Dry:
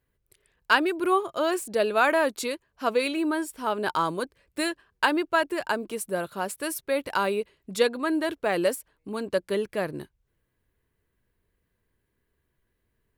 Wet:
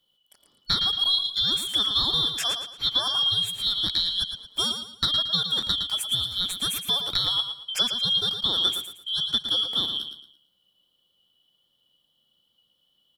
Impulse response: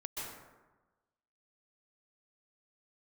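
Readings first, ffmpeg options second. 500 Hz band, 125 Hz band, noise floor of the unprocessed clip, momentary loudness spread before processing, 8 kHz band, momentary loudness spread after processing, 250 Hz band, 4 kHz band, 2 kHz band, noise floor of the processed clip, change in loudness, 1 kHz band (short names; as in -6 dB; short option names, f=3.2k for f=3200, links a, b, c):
-18.5 dB, +4.0 dB, -77 dBFS, 10 LU, +2.5 dB, 6 LU, -12.5 dB, +17.5 dB, -13.0 dB, -71 dBFS, +3.5 dB, -10.5 dB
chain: -filter_complex "[0:a]afftfilt=real='real(if(lt(b,272),68*(eq(floor(b/68),0)*1+eq(floor(b/68),1)*3+eq(floor(b/68),2)*0+eq(floor(b/68),3)*2)+mod(b,68),b),0)':imag='imag(if(lt(b,272),68*(eq(floor(b/68),0)*1+eq(floor(b/68),1)*3+eq(floor(b/68),2)*0+eq(floor(b/68),3)*2)+mod(b,68),b),0)':win_size=2048:overlap=0.75,equalizer=f=2.2k:t=o:w=2:g=3,acrossover=split=780|1600[a][b][c];[a]acompressor=threshold=-39dB:ratio=4[d];[b]acompressor=threshold=-41dB:ratio=4[e];[c]acompressor=threshold=-25dB:ratio=4[f];[d][e][f]amix=inputs=3:normalize=0,asplit=2[g][h];[h]aecho=0:1:113|226|339|452:0.398|0.127|0.0408|0.013[i];[g][i]amix=inputs=2:normalize=0,volume=2.5dB"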